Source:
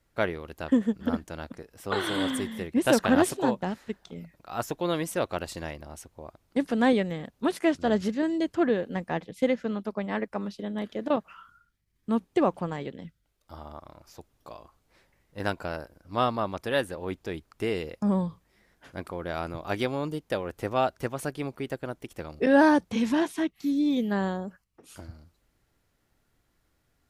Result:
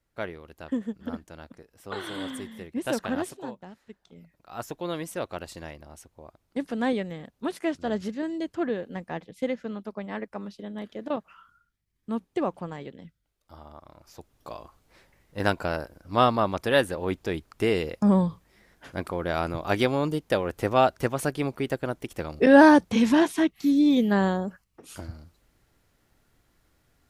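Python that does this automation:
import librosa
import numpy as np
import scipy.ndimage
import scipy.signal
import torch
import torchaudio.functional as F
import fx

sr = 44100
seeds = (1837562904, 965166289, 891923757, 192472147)

y = fx.gain(x, sr, db=fx.line((3.04, -6.5), (3.68, -14.5), (4.65, -4.0), (13.76, -4.0), (14.53, 5.0)))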